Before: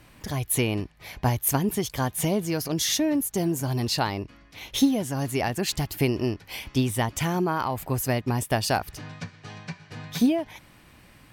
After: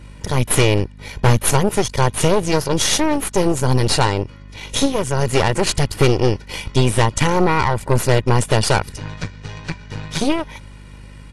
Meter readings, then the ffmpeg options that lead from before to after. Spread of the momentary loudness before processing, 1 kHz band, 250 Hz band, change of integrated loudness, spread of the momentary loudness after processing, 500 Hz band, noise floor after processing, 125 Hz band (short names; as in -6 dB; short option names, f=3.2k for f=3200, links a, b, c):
16 LU, +9.5 dB, +4.5 dB, +8.0 dB, 14 LU, +10.5 dB, -39 dBFS, +10.0 dB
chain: -af "equalizer=f=150:w=0.72:g=4.5,aecho=1:1:2.1:0.75,aeval=exprs='val(0)+0.00794*(sin(2*PI*50*n/s)+sin(2*PI*2*50*n/s)/2+sin(2*PI*3*50*n/s)/3+sin(2*PI*4*50*n/s)/4+sin(2*PI*5*50*n/s)/5)':c=same,aeval=exprs='0.447*(cos(1*acos(clip(val(0)/0.447,-1,1)))-cos(1*PI/2))+0.00708*(cos(5*acos(clip(val(0)/0.447,-1,1)))-cos(5*PI/2))+0.01*(cos(7*acos(clip(val(0)/0.447,-1,1)))-cos(7*PI/2))+0.0708*(cos(8*acos(clip(val(0)/0.447,-1,1)))-cos(8*PI/2))':c=same,volume=5dB" -ar 24000 -c:a aac -b:a 48k